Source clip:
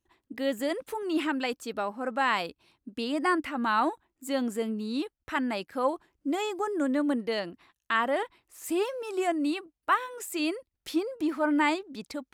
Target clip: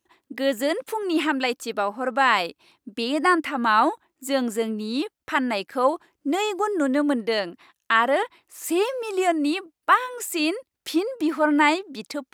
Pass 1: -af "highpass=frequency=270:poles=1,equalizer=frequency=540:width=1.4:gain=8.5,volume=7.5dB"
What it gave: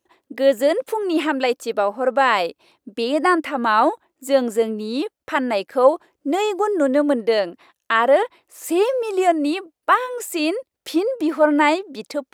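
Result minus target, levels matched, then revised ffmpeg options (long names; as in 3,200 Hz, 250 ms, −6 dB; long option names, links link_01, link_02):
500 Hz band +3.5 dB
-af "highpass=frequency=270:poles=1,volume=7.5dB"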